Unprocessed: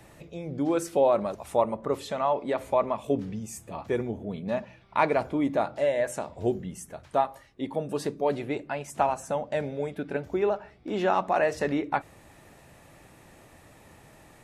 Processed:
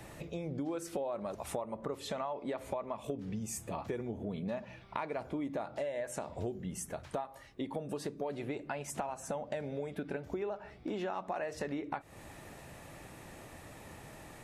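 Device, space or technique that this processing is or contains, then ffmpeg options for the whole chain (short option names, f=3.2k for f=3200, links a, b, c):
serial compression, peaks first: -af "acompressor=threshold=-33dB:ratio=4,acompressor=threshold=-40dB:ratio=2,volume=2.5dB"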